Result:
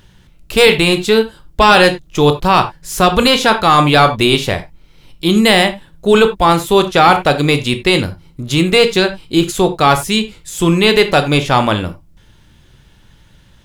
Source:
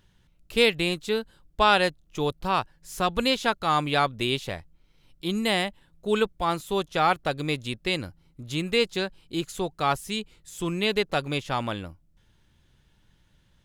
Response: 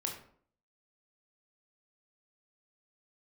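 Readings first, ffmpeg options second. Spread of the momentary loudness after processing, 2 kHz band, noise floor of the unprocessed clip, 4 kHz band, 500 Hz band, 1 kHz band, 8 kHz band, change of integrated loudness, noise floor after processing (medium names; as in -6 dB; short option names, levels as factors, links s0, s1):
9 LU, +13.5 dB, -64 dBFS, +13.5 dB, +14.5 dB, +13.5 dB, +15.5 dB, +14.0 dB, -48 dBFS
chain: -filter_complex "[0:a]asplit=2[s0][s1];[1:a]atrim=start_sample=2205,atrim=end_sample=4410[s2];[s1][s2]afir=irnorm=-1:irlink=0,volume=0.708[s3];[s0][s3]amix=inputs=2:normalize=0,apsyclip=4.73,volume=0.794"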